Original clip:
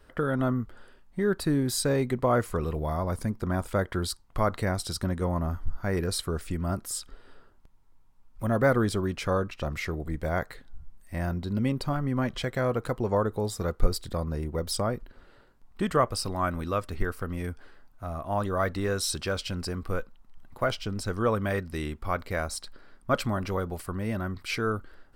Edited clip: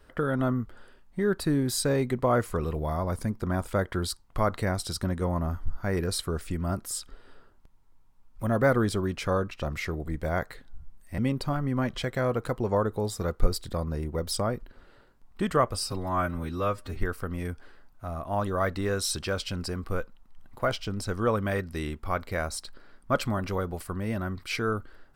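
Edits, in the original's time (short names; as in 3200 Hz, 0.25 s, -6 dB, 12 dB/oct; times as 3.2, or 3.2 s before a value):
11.18–11.58 cut
16.14–16.96 stretch 1.5×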